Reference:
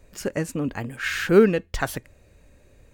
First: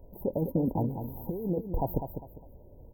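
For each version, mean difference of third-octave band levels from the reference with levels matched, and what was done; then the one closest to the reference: 16.0 dB: peak limiter -14 dBFS, peak gain reduction 11 dB; compressor with a negative ratio -26 dBFS, ratio -0.5; brick-wall FIR band-stop 1–13 kHz; on a send: feedback delay 201 ms, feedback 28%, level -8 dB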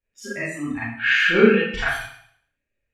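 10.0 dB: spectral noise reduction 28 dB; low-pass 8.6 kHz 12 dB/octave; high-order bell 2.2 kHz +10.5 dB 1.3 oct; Schroeder reverb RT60 0.62 s, combs from 27 ms, DRR -9 dB; trim -9 dB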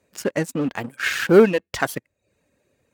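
3.0 dB: Chebyshev shaper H 3 -20 dB, 6 -25 dB, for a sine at -2.5 dBFS; reverb removal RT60 0.52 s; waveshaping leveller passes 2; high-pass 150 Hz 12 dB/octave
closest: third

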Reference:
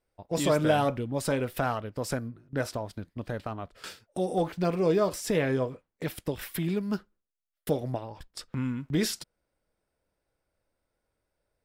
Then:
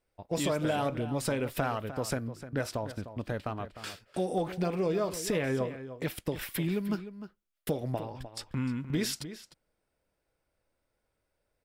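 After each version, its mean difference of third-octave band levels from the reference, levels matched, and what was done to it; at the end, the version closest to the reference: 4.0 dB: peaking EQ 2.5 kHz +2.5 dB; compression, threshold -26 dBFS, peak gain reduction 8 dB; echo from a far wall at 52 m, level -12 dB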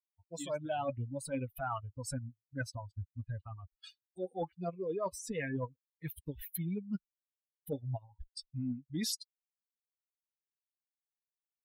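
12.5 dB: expander on every frequency bin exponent 3; dynamic bell 640 Hz, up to +4 dB, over -45 dBFS, Q 3.9; reverse; compression 10:1, threshold -41 dBFS, peak gain reduction 21 dB; reverse; trim +7.5 dB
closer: first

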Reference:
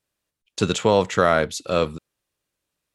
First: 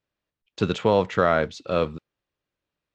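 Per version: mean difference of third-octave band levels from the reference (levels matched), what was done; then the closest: 2.5 dB: modulation noise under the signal 30 dB; distance through air 180 m; trim -1.5 dB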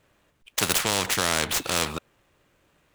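13.5 dB: median filter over 9 samples; spectrum-flattening compressor 4:1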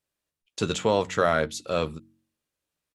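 1.5 dB: doubling 13 ms -11 dB; de-hum 45.8 Hz, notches 7; trim -5 dB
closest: third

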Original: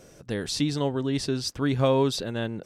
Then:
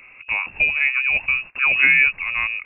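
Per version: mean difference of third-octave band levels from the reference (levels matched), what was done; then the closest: 16.5 dB: frequency inversion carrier 2.7 kHz; trim +6.5 dB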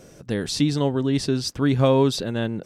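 1.5 dB: peaking EQ 190 Hz +3.5 dB 1.9 oct; trim +2.5 dB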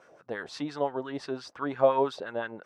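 7.5 dB: wah-wah 5.8 Hz 620–1500 Hz, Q 2.4; trim +6 dB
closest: second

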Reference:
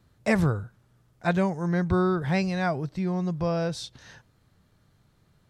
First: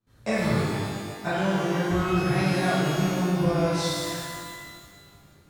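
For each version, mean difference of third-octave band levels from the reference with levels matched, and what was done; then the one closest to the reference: 13.0 dB: gate with hold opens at -53 dBFS; compression, threshold -30 dBFS, peak gain reduction 12 dB; pitch-shifted reverb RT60 1.8 s, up +12 st, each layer -8 dB, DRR -12 dB; trim -2.5 dB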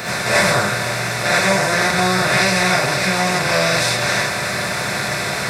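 17.5 dB: spectral levelling over time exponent 0.2; tilt EQ +3.5 dB/octave; gated-style reverb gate 110 ms rising, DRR -7.5 dB; trim -3.5 dB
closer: first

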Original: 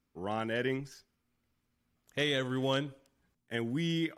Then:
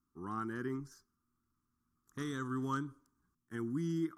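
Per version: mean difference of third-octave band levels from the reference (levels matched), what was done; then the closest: 5.0 dB: FFT filter 140 Hz 0 dB, 350 Hz +3 dB, 580 Hz -24 dB, 1.2 kHz +10 dB, 2.5 kHz -22 dB, 6.1 kHz 0 dB; trim -4.5 dB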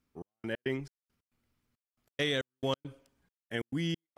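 10.0 dB: trance gate "xx..x.xx..x.xx" 137 bpm -60 dB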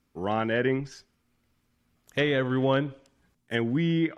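3.5 dB: low-pass that closes with the level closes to 2 kHz, closed at -28 dBFS; trim +7.5 dB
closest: third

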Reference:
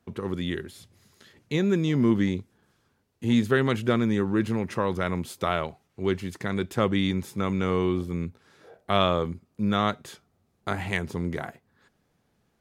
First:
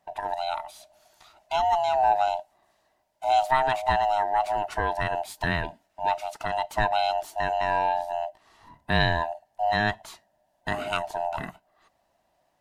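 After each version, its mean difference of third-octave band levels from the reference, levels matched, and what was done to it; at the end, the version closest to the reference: 10.0 dB: split-band scrambler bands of 500 Hz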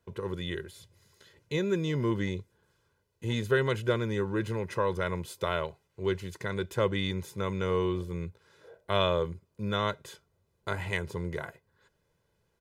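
2.0 dB: comb 2 ms, depth 68%; trim -5 dB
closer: second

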